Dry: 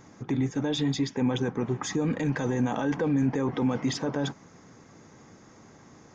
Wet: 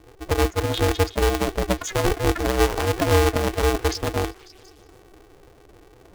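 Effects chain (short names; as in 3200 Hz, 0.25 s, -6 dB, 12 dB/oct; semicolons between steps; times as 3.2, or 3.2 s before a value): spectral contrast raised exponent 2.6; in parallel at -5.5 dB: bit-crush 4-bit; on the sum: rotary speaker horn 6.3 Hz, later 0.9 Hz, at 3.06; delay with a stepping band-pass 0.182 s, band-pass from 1600 Hz, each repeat 0.7 oct, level -11 dB; polarity switched at an audio rate 190 Hz; gain +4.5 dB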